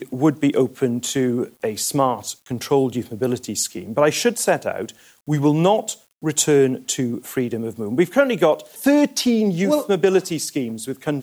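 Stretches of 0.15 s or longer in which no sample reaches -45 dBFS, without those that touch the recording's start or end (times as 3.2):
6.02–6.22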